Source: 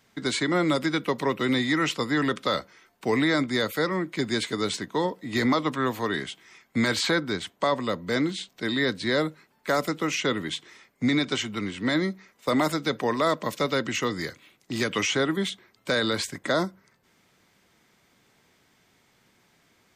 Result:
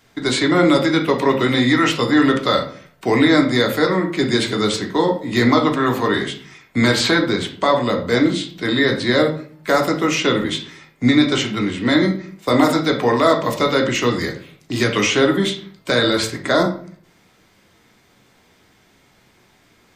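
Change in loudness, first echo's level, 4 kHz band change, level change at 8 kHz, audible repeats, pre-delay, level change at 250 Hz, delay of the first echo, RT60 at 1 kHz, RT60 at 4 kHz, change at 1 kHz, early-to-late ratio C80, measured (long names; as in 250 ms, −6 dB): +9.0 dB, no echo audible, +8.0 dB, +6.5 dB, no echo audible, 3 ms, +9.5 dB, no echo audible, 0.45 s, 0.35 s, +8.5 dB, 13.0 dB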